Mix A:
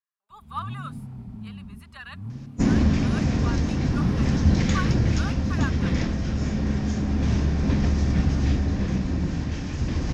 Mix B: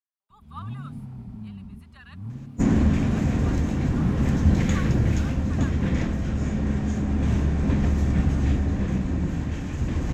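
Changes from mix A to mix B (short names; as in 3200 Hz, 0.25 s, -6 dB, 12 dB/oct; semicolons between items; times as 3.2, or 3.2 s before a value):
speech -8.5 dB; second sound: remove synth low-pass 5200 Hz, resonance Q 3.3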